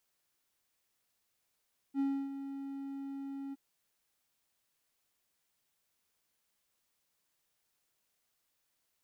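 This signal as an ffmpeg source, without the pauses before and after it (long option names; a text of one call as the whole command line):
ffmpeg -f lavfi -i "aevalsrc='0.0501*(1-4*abs(mod(275*t+0.25,1)-0.5))':duration=1.616:sample_rate=44100,afade=type=in:duration=0.055,afade=type=out:start_time=0.055:duration=0.295:silence=0.282,afade=type=out:start_time=1.59:duration=0.026" out.wav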